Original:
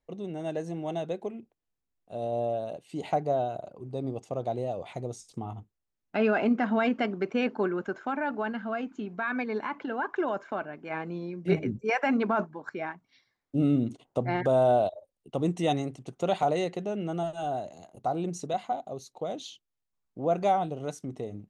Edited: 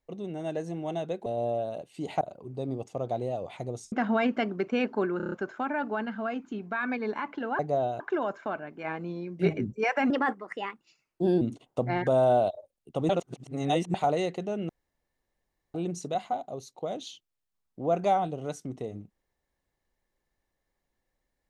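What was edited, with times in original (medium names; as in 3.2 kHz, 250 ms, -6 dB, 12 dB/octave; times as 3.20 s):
1.26–2.21 s: delete
3.16–3.57 s: move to 10.06 s
5.28–6.54 s: delete
7.79 s: stutter 0.03 s, 6 plays
12.16–13.80 s: speed 125%
15.48–16.33 s: reverse
17.08–18.13 s: room tone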